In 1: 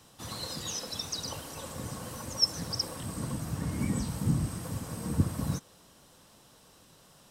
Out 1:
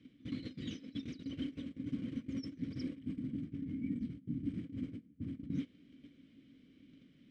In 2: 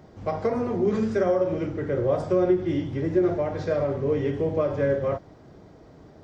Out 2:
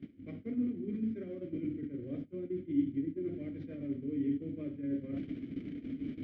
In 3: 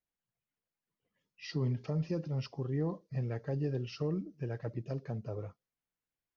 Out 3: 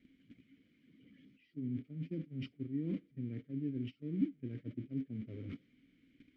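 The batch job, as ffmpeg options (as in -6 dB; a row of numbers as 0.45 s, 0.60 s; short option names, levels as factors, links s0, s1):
-filter_complex "[0:a]aeval=exprs='val(0)+0.5*0.0126*sgn(val(0))':c=same,aemphasis=mode=reproduction:type=riaa,areverse,acompressor=threshold=0.0316:ratio=16,areverse,agate=range=0.1:threshold=0.0224:ratio=16:detection=peak,asplit=3[s0][s1][s2];[s0]bandpass=f=270:t=q:w=8,volume=1[s3];[s1]bandpass=f=2290:t=q:w=8,volume=0.501[s4];[s2]bandpass=f=3010:t=q:w=8,volume=0.355[s5];[s3][s4][s5]amix=inputs=3:normalize=0,volume=3.55"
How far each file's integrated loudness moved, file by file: -9.0 LU, -12.5 LU, -4.5 LU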